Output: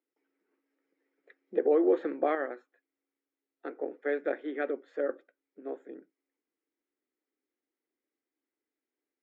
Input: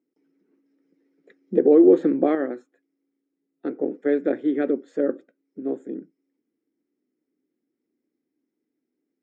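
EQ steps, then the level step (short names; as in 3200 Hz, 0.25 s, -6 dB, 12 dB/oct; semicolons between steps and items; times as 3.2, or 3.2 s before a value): BPF 710–3000 Hz; 0.0 dB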